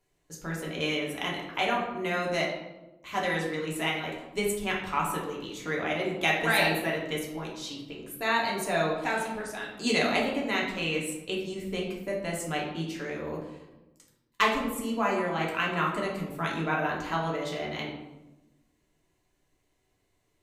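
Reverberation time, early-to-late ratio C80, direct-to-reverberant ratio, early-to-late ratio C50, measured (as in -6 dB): 1.1 s, 7.0 dB, -3.5 dB, 3.5 dB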